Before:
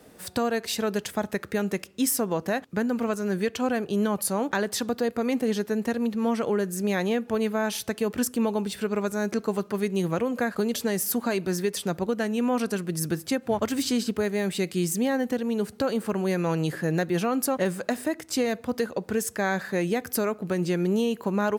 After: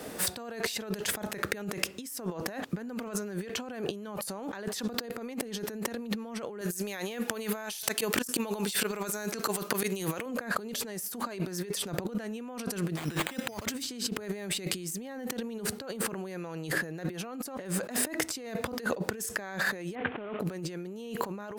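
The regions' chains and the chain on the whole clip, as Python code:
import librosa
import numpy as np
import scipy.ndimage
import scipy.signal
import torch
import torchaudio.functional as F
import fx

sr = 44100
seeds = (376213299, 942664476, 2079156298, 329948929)

y = fx.chain(x, sr, fx.auto_swell(attack_ms=105.0),
    fx.tilt_eq(slope=2.5), at=(6.61, 10.26))
y = fx.chain(y, sr, fx.peak_eq(hz=2800.0, db=9.5, octaves=1.9),
    fx.resample_bad(factor=8, down='none', up='hold'), at=(12.96, 13.66))
y = fx.chain(y, sr, fx.cvsd(bps=16000),
    fx.highpass(hz=93.0, slope=12), at=(19.95, 20.4))
y = fx.low_shelf(y, sr, hz=180.0, db=-7.5)
y = fx.over_compress(y, sr, threshold_db=-39.0, ratio=-1.0)
y = F.gain(torch.from_numpy(y), 3.0).numpy()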